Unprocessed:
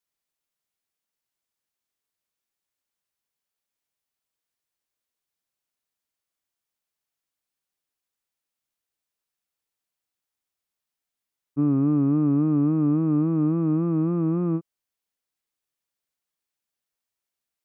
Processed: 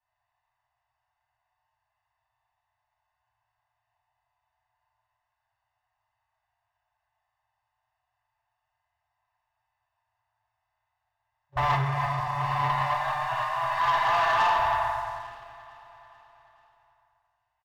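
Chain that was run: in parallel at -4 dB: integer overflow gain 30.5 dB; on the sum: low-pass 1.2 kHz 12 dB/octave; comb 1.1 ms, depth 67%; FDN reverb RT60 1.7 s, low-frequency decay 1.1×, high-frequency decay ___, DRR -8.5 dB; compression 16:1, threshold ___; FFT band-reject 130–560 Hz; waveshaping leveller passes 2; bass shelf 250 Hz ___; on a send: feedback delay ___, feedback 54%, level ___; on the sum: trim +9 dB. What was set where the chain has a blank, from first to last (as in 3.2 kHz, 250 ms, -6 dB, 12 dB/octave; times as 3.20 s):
0.7×, -13 dBFS, -7 dB, 435 ms, -18.5 dB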